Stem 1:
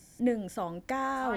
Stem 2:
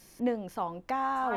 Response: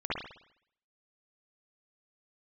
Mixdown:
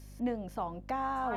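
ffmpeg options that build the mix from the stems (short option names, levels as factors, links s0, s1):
-filter_complex "[0:a]lowpass=f=570:t=q:w=4.9,volume=0.299[s0];[1:a]aeval=exprs='val(0)+0.00631*(sin(2*PI*50*n/s)+sin(2*PI*2*50*n/s)/2+sin(2*PI*3*50*n/s)/3+sin(2*PI*4*50*n/s)/4+sin(2*PI*5*50*n/s)/5)':c=same,volume=0.596,asplit=2[s1][s2];[s2]apad=whole_len=60407[s3];[s0][s3]sidechaincompress=threshold=0.0141:ratio=8:attack=16:release=234[s4];[s4][s1]amix=inputs=2:normalize=0"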